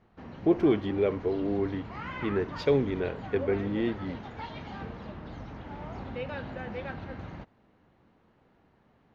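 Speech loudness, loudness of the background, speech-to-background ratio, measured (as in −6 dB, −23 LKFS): −29.0 LKFS, −40.5 LKFS, 11.5 dB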